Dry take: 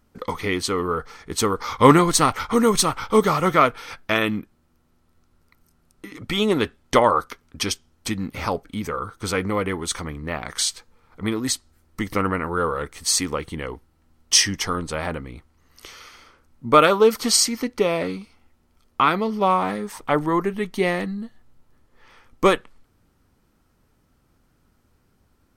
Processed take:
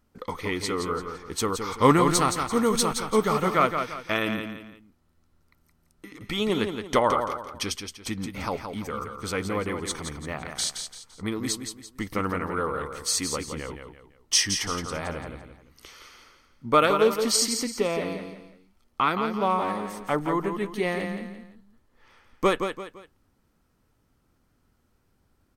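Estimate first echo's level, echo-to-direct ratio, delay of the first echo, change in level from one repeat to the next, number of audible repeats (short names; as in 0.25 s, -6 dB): -7.0 dB, -6.5 dB, 0.17 s, -9.0 dB, 3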